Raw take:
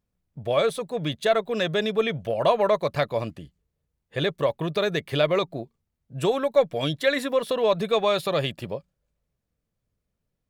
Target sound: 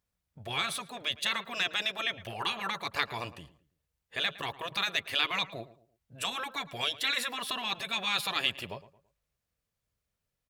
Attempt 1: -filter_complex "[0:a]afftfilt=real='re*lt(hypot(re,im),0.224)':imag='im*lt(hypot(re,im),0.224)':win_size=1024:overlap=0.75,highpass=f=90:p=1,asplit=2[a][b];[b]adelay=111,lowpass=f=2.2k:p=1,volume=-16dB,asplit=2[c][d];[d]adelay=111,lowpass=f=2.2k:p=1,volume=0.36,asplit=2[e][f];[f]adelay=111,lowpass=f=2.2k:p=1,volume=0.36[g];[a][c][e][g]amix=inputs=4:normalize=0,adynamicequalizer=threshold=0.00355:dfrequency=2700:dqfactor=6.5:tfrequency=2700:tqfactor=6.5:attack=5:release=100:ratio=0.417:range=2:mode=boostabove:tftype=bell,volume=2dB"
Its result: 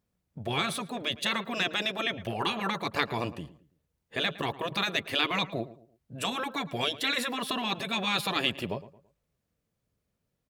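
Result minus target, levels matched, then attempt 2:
250 Hz band +10.0 dB
-filter_complex "[0:a]afftfilt=real='re*lt(hypot(re,im),0.224)':imag='im*lt(hypot(re,im),0.224)':win_size=1024:overlap=0.75,highpass=f=90:p=1,equalizer=f=250:t=o:w=2.7:g=-12,asplit=2[a][b];[b]adelay=111,lowpass=f=2.2k:p=1,volume=-16dB,asplit=2[c][d];[d]adelay=111,lowpass=f=2.2k:p=1,volume=0.36,asplit=2[e][f];[f]adelay=111,lowpass=f=2.2k:p=1,volume=0.36[g];[a][c][e][g]amix=inputs=4:normalize=0,adynamicequalizer=threshold=0.00355:dfrequency=2700:dqfactor=6.5:tfrequency=2700:tqfactor=6.5:attack=5:release=100:ratio=0.417:range=2:mode=boostabove:tftype=bell,volume=2dB"

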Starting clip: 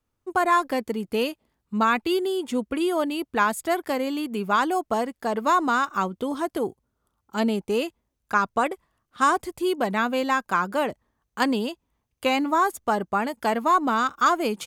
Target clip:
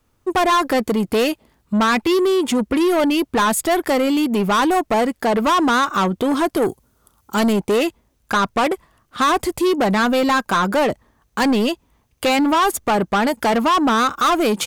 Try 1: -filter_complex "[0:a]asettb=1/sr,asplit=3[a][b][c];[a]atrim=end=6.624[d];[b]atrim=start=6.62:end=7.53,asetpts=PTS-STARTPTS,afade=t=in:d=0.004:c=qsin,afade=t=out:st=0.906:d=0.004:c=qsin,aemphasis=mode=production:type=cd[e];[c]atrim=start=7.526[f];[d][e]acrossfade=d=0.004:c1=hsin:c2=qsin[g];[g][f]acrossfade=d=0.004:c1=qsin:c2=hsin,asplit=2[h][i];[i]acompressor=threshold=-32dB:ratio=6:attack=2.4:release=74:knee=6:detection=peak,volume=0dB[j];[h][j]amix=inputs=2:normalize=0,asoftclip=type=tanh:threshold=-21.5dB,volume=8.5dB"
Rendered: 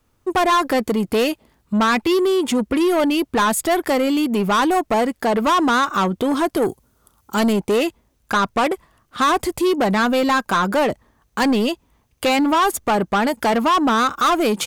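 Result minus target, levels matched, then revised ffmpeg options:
compressor: peak gain reduction +5.5 dB
-filter_complex "[0:a]asettb=1/sr,asplit=3[a][b][c];[a]atrim=end=6.624[d];[b]atrim=start=6.62:end=7.53,asetpts=PTS-STARTPTS,afade=t=in:d=0.004:c=qsin,afade=t=out:st=0.906:d=0.004:c=qsin,aemphasis=mode=production:type=cd[e];[c]atrim=start=7.526[f];[d][e]acrossfade=d=0.004:c1=hsin:c2=qsin[g];[g][f]acrossfade=d=0.004:c1=qsin:c2=hsin,asplit=2[h][i];[i]acompressor=threshold=-25.5dB:ratio=6:attack=2.4:release=74:knee=6:detection=peak,volume=0dB[j];[h][j]amix=inputs=2:normalize=0,asoftclip=type=tanh:threshold=-21.5dB,volume=8.5dB"

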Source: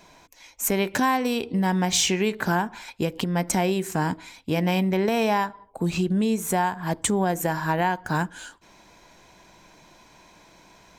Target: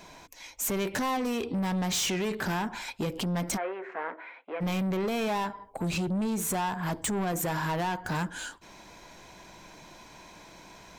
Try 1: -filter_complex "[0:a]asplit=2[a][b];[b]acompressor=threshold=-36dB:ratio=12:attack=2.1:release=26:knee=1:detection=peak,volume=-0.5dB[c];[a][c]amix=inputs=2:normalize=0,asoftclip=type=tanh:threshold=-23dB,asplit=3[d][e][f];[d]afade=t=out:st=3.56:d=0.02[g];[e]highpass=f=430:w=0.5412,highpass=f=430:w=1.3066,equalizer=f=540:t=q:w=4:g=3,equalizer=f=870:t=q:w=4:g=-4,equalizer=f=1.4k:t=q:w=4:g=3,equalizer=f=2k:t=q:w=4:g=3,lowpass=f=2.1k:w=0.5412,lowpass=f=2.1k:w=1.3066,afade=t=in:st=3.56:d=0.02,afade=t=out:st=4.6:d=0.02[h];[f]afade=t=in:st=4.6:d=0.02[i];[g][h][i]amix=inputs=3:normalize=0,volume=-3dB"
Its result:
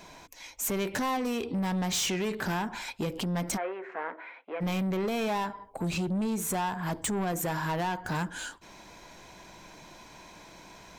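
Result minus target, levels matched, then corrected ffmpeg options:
compressor: peak gain reduction +7.5 dB
-filter_complex "[0:a]asplit=2[a][b];[b]acompressor=threshold=-28dB:ratio=12:attack=2.1:release=26:knee=1:detection=peak,volume=-0.5dB[c];[a][c]amix=inputs=2:normalize=0,asoftclip=type=tanh:threshold=-23dB,asplit=3[d][e][f];[d]afade=t=out:st=3.56:d=0.02[g];[e]highpass=f=430:w=0.5412,highpass=f=430:w=1.3066,equalizer=f=540:t=q:w=4:g=3,equalizer=f=870:t=q:w=4:g=-4,equalizer=f=1.4k:t=q:w=4:g=3,equalizer=f=2k:t=q:w=4:g=3,lowpass=f=2.1k:w=0.5412,lowpass=f=2.1k:w=1.3066,afade=t=in:st=3.56:d=0.02,afade=t=out:st=4.6:d=0.02[h];[f]afade=t=in:st=4.6:d=0.02[i];[g][h][i]amix=inputs=3:normalize=0,volume=-3dB"

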